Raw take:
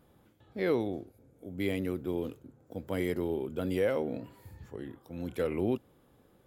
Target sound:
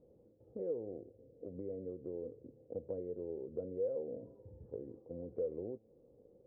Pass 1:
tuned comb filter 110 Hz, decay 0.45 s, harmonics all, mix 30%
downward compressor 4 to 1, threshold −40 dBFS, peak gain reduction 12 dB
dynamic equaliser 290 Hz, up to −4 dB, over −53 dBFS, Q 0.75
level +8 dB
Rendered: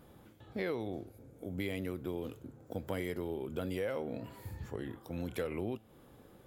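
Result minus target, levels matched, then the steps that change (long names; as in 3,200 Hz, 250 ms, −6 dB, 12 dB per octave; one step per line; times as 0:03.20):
500 Hz band −2.5 dB
add after downward compressor: transistor ladder low-pass 540 Hz, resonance 70%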